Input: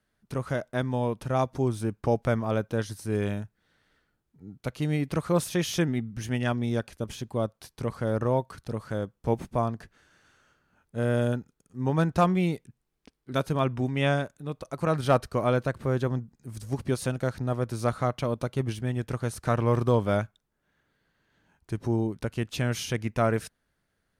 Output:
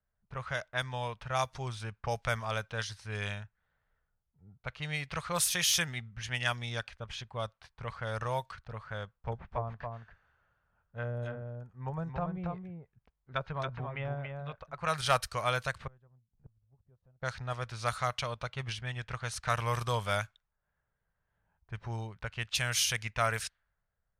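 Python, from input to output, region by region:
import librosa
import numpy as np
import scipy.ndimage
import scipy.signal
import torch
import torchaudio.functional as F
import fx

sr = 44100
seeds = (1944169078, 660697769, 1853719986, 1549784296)

y = fx.chain(x, sr, fx.env_lowpass_down(base_hz=500.0, full_db=-20.5),
    fx.echo_single(ms=279, db=-5.0), at=(9.04, 14.73))
y = fx.chain(y, sr, fx.tilt_shelf(db=7.0, hz=890.0),
    fx.notch(hz=2200.0, q=20.0),
    fx.gate_flip(shuts_db=-29.0, range_db=-31), at=(15.87, 17.22))
y = fx.tone_stack(y, sr, knobs='10-0-10')
y = fx.env_lowpass(y, sr, base_hz=660.0, full_db=-34.5)
y = fx.low_shelf(y, sr, hz=410.0, db=-3.5)
y = F.gain(torch.from_numpy(y), 8.0).numpy()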